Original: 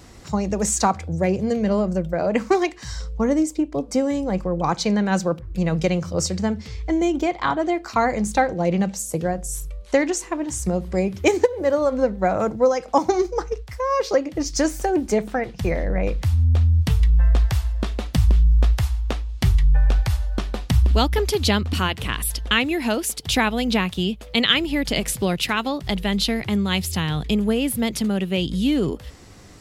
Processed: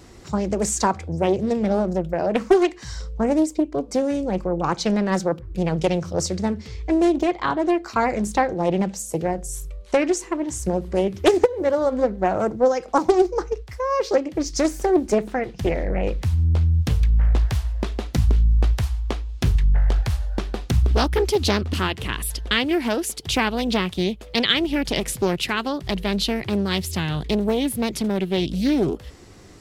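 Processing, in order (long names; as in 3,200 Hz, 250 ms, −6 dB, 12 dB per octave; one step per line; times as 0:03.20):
parametric band 370 Hz +6 dB 0.48 octaves
highs frequency-modulated by the lows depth 0.73 ms
level −1.5 dB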